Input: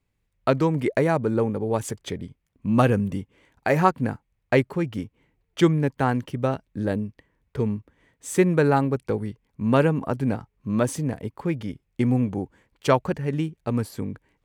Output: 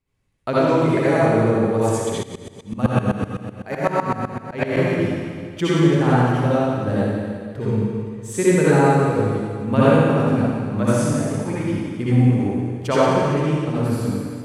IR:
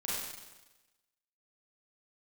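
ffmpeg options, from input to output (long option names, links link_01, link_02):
-filter_complex "[1:a]atrim=start_sample=2205,asetrate=24696,aresample=44100[link_01];[0:a][link_01]afir=irnorm=-1:irlink=0,asettb=1/sr,asplit=3[link_02][link_03][link_04];[link_02]atrim=end=2.234[link_05];[link_03]atrim=start=2.23:end=4.77,asetpts=PTS-STARTPTS,afade=type=in:duration=0.004:curve=qsin,afade=type=out:start_time=2.536:duration=0.004:curve=qsin,aeval=exprs='val(0)*pow(10,-18*if(lt(mod(-7.9*n/s,1),2*abs(-7.9)/1000),1-mod(-7.9*n/s,1)/(2*abs(-7.9)/1000),(mod(-7.9*n/s,1)-2*abs(-7.9)/1000)/(1-2*abs(-7.9)/1000))/20)':channel_layout=same[link_06];[link_04]atrim=start=4.766[link_07];[link_05][link_06]acrossfade=duration=0.004:curve1=hsin:curve2=qsin[link_08];[link_08][link_07]acrossfade=duration=0.004:curve1=qsin:curve2=hsin,volume=-3dB"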